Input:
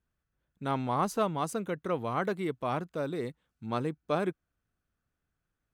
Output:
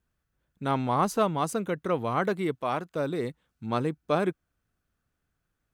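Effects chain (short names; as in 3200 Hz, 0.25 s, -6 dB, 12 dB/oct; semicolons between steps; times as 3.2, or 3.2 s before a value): 2.55–2.96 low shelf 230 Hz -9.5 dB; gain +4 dB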